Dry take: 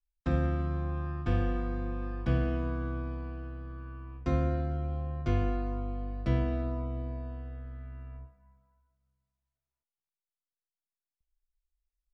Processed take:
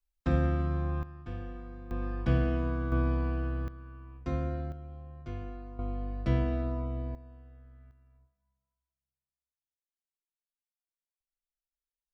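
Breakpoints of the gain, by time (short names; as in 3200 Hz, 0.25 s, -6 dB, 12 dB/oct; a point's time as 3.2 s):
+1.5 dB
from 1.03 s -11 dB
from 1.91 s +1.5 dB
from 2.92 s +8 dB
from 3.68 s -4 dB
from 4.72 s -11 dB
from 5.79 s +0.5 dB
from 7.15 s -11.5 dB
from 7.91 s -19 dB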